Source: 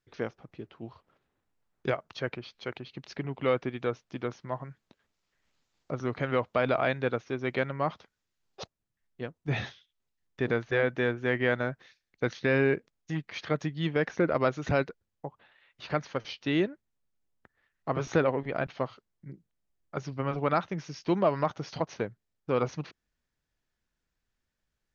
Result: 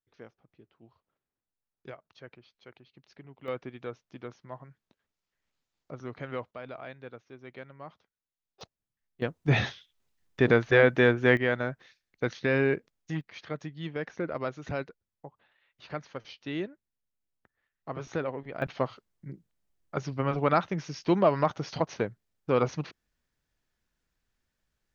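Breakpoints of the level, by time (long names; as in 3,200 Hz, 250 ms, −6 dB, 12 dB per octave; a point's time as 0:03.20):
−15 dB
from 0:03.48 −8 dB
from 0:06.51 −15.5 dB
from 0:08.61 −5.5 dB
from 0:09.22 +6.5 dB
from 0:11.37 −0.5 dB
from 0:13.21 −7 dB
from 0:18.62 +2.5 dB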